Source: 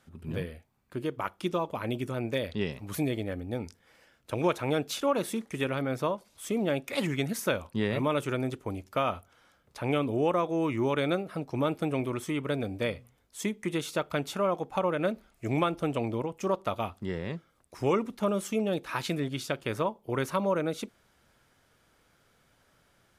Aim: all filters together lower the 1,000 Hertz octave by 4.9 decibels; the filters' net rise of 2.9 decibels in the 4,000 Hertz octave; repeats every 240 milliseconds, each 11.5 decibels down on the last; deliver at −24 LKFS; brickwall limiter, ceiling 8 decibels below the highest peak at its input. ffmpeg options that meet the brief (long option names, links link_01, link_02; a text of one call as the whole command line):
ffmpeg -i in.wav -af "equalizer=frequency=1000:width_type=o:gain=-6.5,equalizer=frequency=4000:width_type=o:gain=4,alimiter=limit=-23dB:level=0:latency=1,aecho=1:1:240|480|720:0.266|0.0718|0.0194,volume=10dB" out.wav